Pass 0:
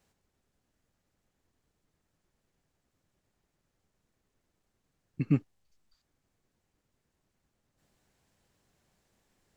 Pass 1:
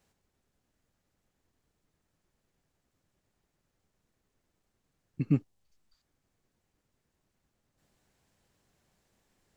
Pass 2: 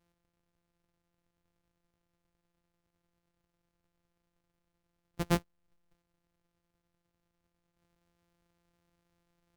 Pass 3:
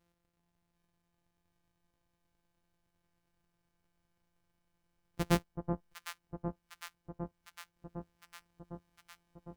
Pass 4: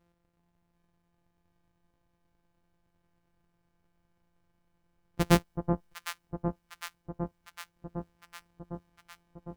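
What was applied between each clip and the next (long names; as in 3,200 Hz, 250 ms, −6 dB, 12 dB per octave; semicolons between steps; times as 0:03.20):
dynamic equaliser 1,800 Hz, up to −5 dB, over −57 dBFS, Q 0.81
samples sorted by size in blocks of 256 samples; level −3 dB
delay that swaps between a low-pass and a high-pass 378 ms, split 1,100 Hz, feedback 84%, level −6 dB
one half of a high-frequency compander decoder only; level +6.5 dB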